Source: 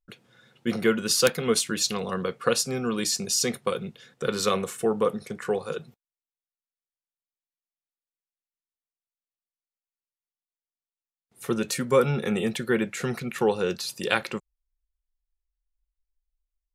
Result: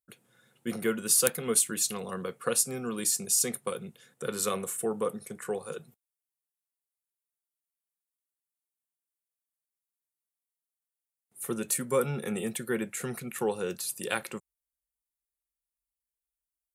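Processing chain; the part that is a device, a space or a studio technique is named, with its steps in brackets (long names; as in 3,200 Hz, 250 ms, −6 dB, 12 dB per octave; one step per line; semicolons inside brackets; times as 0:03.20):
budget condenser microphone (high-pass filter 90 Hz; high shelf with overshoot 6,900 Hz +11 dB, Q 1.5)
level −6.5 dB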